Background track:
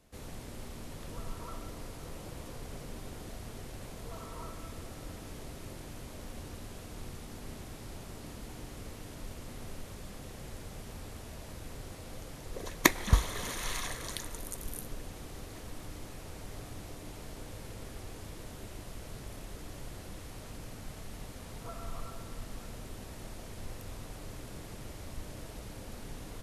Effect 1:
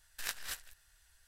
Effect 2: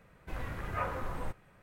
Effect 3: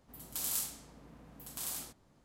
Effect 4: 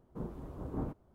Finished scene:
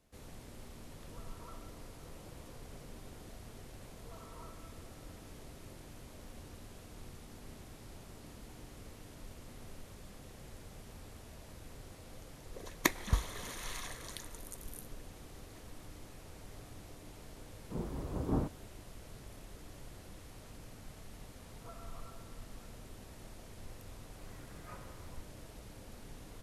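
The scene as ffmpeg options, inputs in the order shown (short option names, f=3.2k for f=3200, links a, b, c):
-filter_complex "[0:a]volume=-6.5dB[a];[4:a]dynaudnorm=f=140:g=3:m=11.5dB,atrim=end=1.14,asetpts=PTS-STARTPTS,volume=-7dB,afade=t=in:d=0.004:c=hsin,afade=t=out:st=1.136:d=0.004:c=hsin,adelay=17550[b];[2:a]atrim=end=1.62,asetpts=PTS-STARTPTS,volume=-17.5dB,afade=t=in:d=0.004:c=hsin,afade=t=out:st=1.616:d=0.004:c=hsin,adelay=23910[c];[a][b][c]amix=inputs=3:normalize=0"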